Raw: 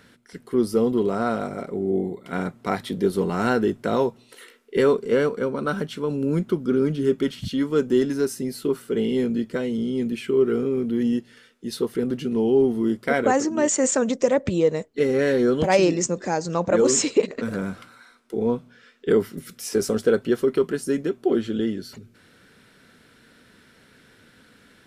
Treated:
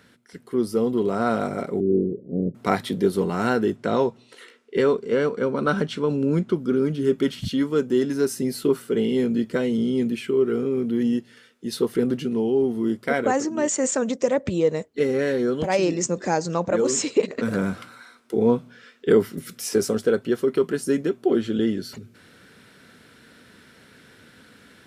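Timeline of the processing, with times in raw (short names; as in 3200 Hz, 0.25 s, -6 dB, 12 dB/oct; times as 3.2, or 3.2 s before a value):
1.8–2.55 steep low-pass 510 Hz 48 dB/oct
3.76–6.56 LPF 7500 Hz
whole clip: HPF 52 Hz; vocal rider within 4 dB 0.5 s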